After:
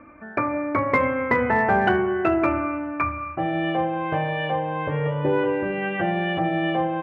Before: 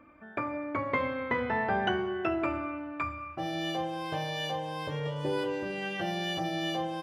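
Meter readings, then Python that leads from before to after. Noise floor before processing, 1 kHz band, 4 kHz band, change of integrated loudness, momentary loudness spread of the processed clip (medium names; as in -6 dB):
-47 dBFS, +9.5 dB, -1.5 dB, +9.0 dB, 7 LU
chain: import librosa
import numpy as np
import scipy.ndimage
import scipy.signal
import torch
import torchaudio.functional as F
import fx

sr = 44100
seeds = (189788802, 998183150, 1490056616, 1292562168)

p1 = scipy.signal.sosfilt(scipy.signal.butter(6, 2500.0, 'lowpass', fs=sr, output='sos'), x)
p2 = np.clip(10.0 ** (23.5 / 20.0) * p1, -1.0, 1.0) / 10.0 ** (23.5 / 20.0)
p3 = p1 + (p2 * 10.0 ** (-9.0 / 20.0))
y = p3 * 10.0 ** (7.0 / 20.0)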